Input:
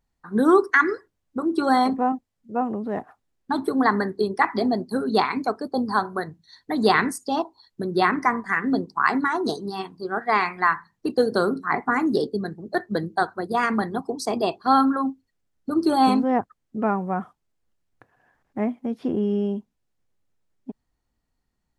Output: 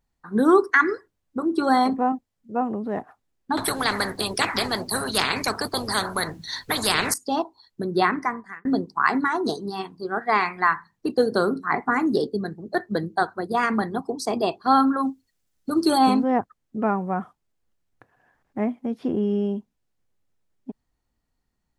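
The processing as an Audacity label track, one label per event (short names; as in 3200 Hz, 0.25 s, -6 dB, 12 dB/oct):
3.570000	7.140000	spectral compressor 4:1
8.010000	8.650000	fade out
14.980000	15.970000	high shelf 3700 Hz -> 2200 Hz +10.5 dB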